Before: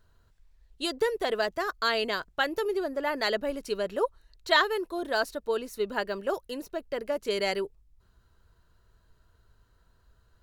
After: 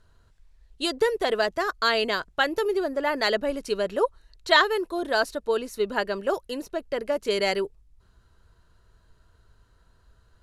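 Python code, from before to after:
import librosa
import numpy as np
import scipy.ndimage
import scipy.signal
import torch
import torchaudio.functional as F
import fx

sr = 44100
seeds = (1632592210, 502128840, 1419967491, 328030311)

y = scipy.signal.sosfilt(scipy.signal.butter(4, 12000.0, 'lowpass', fs=sr, output='sos'), x)
y = F.gain(torch.from_numpy(y), 4.0).numpy()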